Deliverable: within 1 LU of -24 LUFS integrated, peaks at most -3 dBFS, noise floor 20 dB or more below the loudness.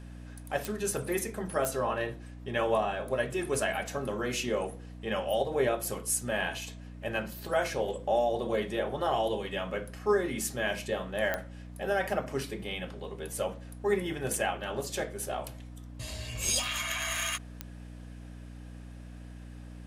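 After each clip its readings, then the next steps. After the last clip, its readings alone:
clicks found 4; hum 60 Hz; highest harmonic 300 Hz; hum level -42 dBFS; loudness -32.0 LUFS; peak level -15.0 dBFS; loudness target -24.0 LUFS
-> de-click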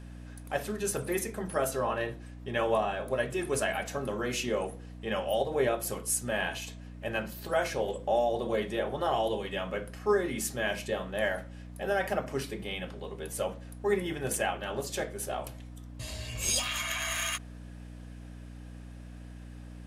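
clicks found 0; hum 60 Hz; highest harmonic 300 Hz; hum level -42 dBFS
-> de-hum 60 Hz, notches 5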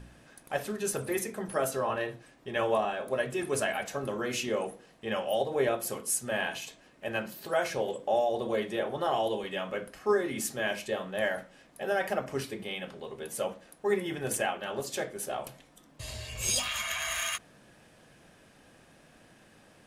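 hum not found; loudness -32.0 LUFS; peak level -16.0 dBFS; loudness target -24.0 LUFS
-> trim +8 dB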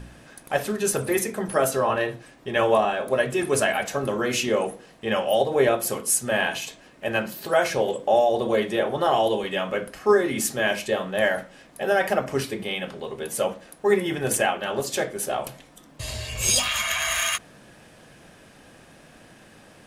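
loudness -24.0 LUFS; peak level -8.0 dBFS; noise floor -51 dBFS

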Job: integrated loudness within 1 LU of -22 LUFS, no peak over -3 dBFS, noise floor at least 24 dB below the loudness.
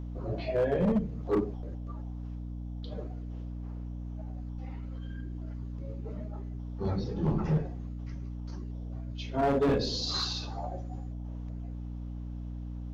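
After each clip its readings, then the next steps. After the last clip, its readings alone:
clipped samples 1.1%; clipping level -21.5 dBFS; hum 60 Hz; highest harmonic 300 Hz; hum level -36 dBFS; loudness -34.5 LUFS; peak level -21.5 dBFS; loudness target -22.0 LUFS
-> clip repair -21.5 dBFS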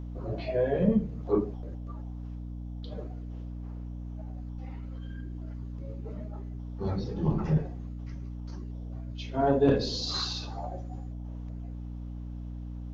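clipped samples 0.0%; hum 60 Hz; highest harmonic 300 Hz; hum level -36 dBFS
-> hum notches 60/120/180/240/300 Hz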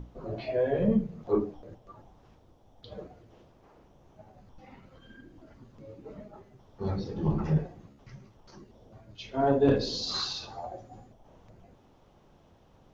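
hum not found; loudness -29.5 LUFS; peak level -12.0 dBFS; loudness target -22.0 LUFS
-> trim +7.5 dB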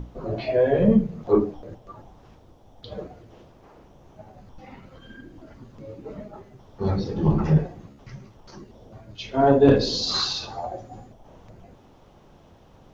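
loudness -22.0 LUFS; peak level -4.5 dBFS; noise floor -53 dBFS

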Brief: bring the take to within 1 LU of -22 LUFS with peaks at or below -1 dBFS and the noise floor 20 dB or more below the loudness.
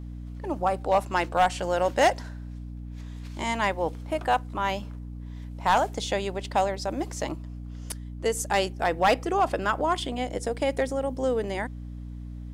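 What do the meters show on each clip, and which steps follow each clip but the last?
clipped samples 0.3%; clipping level -14.0 dBFS; hum 60 Hz; highest harmonic 300 Hz; hum level -35 dBFS; loudness -27.0 LUFS; peak level -14.0 dBFS; loudness target -22.0 LUFS
-> clip repair -14 dBFS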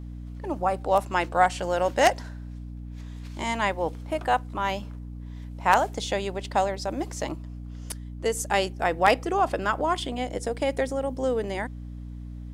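clipped samples 0.0%; hum 60 Hz; highest harmonic 300 Hz; hum level -35 dBFS
-> hum notches 60/120/180/240/300 Hz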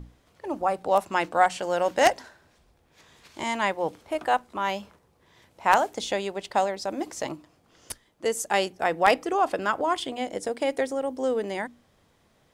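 hum not found; loudness -26.5 LUFS; peak level -4.5 dBFS; loudness target -22.0 LUFS
-> trim +4.5 dB; peak limiter -1 dBFS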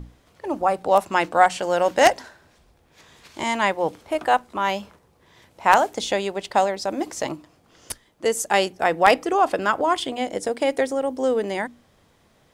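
loudness -22.0 LUFS; peak level -1.0 dBFS; noise floor -60 dBFS

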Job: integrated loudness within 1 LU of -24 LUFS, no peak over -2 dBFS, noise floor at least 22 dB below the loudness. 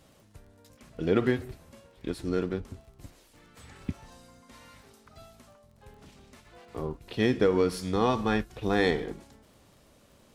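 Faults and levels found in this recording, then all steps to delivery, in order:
tick rate 26 per s; loudness -29.0 LUFS; peak level -10.5 dBFS; loudness target -24.0 LUFS
-> de-click; trim +5 dB

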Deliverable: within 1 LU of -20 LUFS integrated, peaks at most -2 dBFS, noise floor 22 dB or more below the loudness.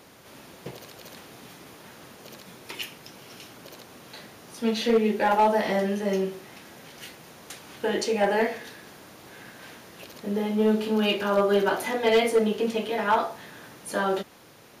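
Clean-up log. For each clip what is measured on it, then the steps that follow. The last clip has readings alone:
clipped samples 0.3%; clipping level -14.5 dBFS; loudness -25.0 LUFS; peak level -14.5 dBFS; loudness target -20.0 LUFS
-> clip repair -14.5 dBFS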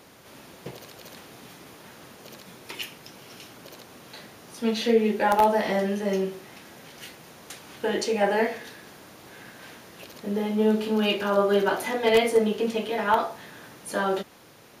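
clipped samples 0.0%; loudness -24.5 LUFS; peak level -5.5 dBFS; loudness target -20.0 LUFS
-> trim +4.5 dB; peak limiter -2 dBFS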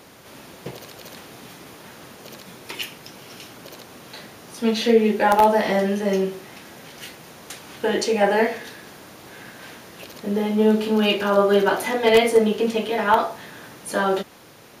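loudness -20.0 LUFS; peak level -2.0 dBFS; noise floor -47 dBFS

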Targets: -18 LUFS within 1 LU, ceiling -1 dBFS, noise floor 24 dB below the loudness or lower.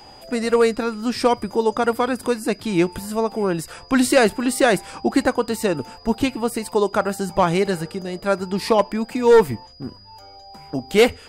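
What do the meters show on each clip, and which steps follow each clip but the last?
steady tone 4.9 kHz; tone level -46 dBFS; loudness -20.5 LUFS; peak level -5.5 dBFS; loudness target -18.0 LUFS
-> band-stop 4.9 kHz, Q 30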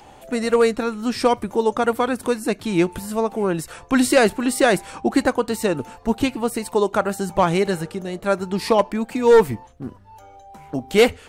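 steady tone not found; loudness -20.5 LUFS; peak level -5.5 dBFS; loudness target -18.0 LUFS
-> trim +2.5 dB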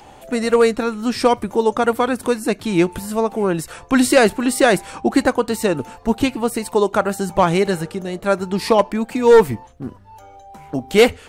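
loudness -18.0 LUFS; peak level -3.0 dBFS; noise floor -44 dBFS

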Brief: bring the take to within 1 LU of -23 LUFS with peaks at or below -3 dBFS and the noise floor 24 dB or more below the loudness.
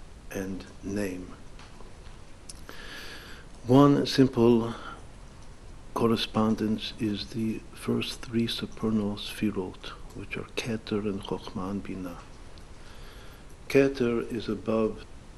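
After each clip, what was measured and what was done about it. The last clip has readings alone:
noise floor -48 dBFS; noise floor target -52 dBFS; loudness -28.0 LUFS; peak level -7.0 dBFS; loudness target -23.0 LUFS
-> noise print and reduce 6 dB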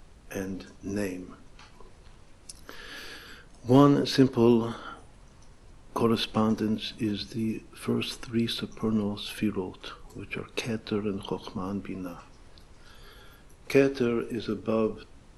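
noise floor -53 dBFS; loudness -28.0 LUFS; peak level -7.0 dBFS; loudness target -23.0 LUFS
-> trim +5 dB; peak limiter -3 dBFS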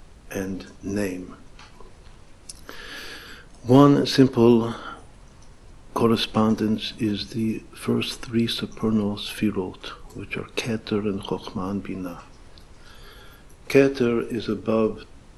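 loudness -23.0 LUFS; peak level -3.0 dBFS; noise floor -48 dBFS

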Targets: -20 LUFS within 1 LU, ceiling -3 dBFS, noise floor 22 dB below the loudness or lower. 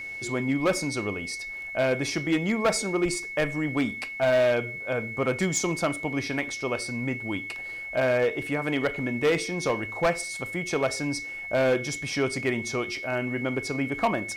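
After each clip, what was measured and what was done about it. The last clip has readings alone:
clipped samples 1.1%; clipping level -17.5 dBFS; steady tone 2.2 kHz; tone level -34 dBFS; loudness -27.0 LUFS; peak level -17.5 dBFS; loudness target -20.0 LUFS
-> clip repair -17.5 dBFS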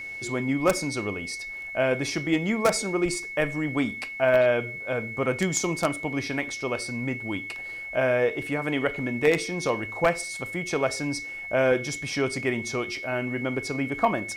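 clipped samples 0.0%; steady tone 2.2 kHz; tone level -34 dBFS
-> band-stop 2.2 kHz, Q 30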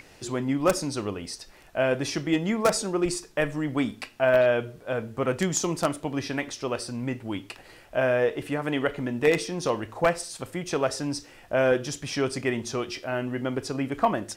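steady tone not found; loudness -27.0 LUFS; peak level -8.5 dBFS; loudness target -20.0 LUFS
-> trim +7 dB; peak limiter -3 dBFS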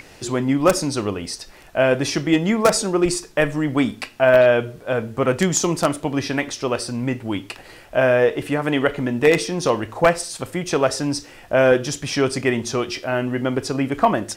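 loudness -20.5 LUFS; peak level -3.0 dBFS; noise floor -45 dBFS

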